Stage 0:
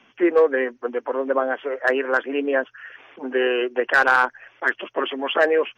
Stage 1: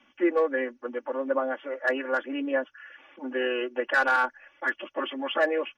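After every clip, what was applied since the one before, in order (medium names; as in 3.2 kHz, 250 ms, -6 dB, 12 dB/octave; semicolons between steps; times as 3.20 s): comb 3.5 ms, depth 97%; trim -9 dB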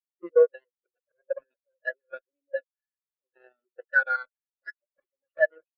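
static phaser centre 930 Hz, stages 6; Chebyshev shaper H 7 -14 dB, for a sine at -12.5 dBFS; spectral contrast expander 2.5:1; trim +4.5 dB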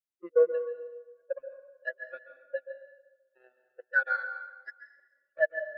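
plate-style reverb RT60 1.2 s, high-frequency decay 0.7×, pre-delay 120 ms, DRR 8 dB; trim -4 dB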